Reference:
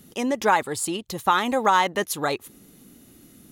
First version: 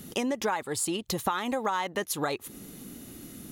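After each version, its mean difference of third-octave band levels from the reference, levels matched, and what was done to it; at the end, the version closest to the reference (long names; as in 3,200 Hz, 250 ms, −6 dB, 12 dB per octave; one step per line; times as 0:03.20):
6.5 dB: downward compressor 6 to 1, threshold −33 dBFS, peak gain reduction 17.5 dB
level +6 dB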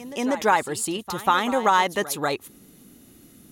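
2.0 dB: echo ahead of the sound 191 ms −14.5 dB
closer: second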